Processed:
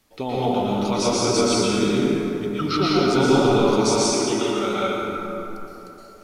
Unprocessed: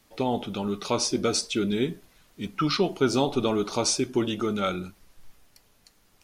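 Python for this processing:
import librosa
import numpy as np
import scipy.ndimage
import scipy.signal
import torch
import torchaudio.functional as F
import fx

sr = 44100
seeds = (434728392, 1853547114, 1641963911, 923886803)

y = fx.highpass(x, sr, hz=420.0, slope=6, at=(3.63, 4.86))
y = fx.rev_plate(y, sr, seeds[0], rt60_s=3.4, hf_ratio=0.45, predelay_ms=105, drr_db=-8.5)
y = F.gain(torch.from_numpy(y), -2.0).numpy()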